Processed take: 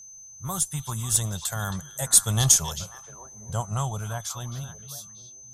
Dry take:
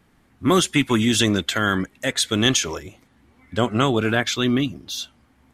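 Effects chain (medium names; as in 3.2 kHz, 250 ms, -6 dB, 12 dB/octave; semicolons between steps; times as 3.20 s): Doppler pass-by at 2.50 s, 9 m/s, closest 6.3 m; FFT filter 160 Hz 0 dB, 280 Hz -29 dB, 840 Hz -1 dB, 2.3 kHz -23 dB, 9.2 kHz +10 dB; in parallel at -12 dB: Schmitt trigger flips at -17 dBFS; on the sum: whistle 6.2 kHz -47 dBFS; repeats whose band climbs or falls 270 ms, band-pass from 3.3 kHz, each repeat -1.4 oct, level -7 dB; trim +4 dB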